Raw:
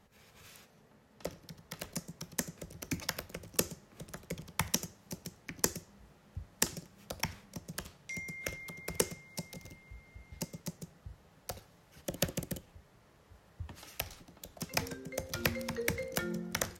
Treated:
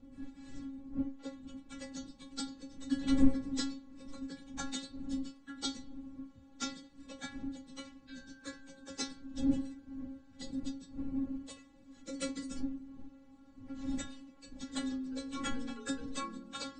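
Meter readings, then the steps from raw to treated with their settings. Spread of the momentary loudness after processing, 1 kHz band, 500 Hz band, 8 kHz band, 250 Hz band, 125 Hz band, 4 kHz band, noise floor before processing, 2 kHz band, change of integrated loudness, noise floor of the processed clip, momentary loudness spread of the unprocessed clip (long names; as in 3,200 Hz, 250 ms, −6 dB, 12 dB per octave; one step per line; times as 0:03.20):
16 LU, −3.0 dB, −7.5 dB, −8.5 dB, +8.5 dB, −7.5 dB, −2.5 dB, −64 dBFS, −9.0 dB, −1.0 dB, −59 dBFS, 17 LU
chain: partials spread apart or drawn together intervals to 86%
wind on the microphone 150 Hz −39 dBFS
parametric band 270 Hz +11 dB 0.54 octaves
stiff-string resonator 270 Hz, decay 0.27 s, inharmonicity 0.002
level +9.5 dB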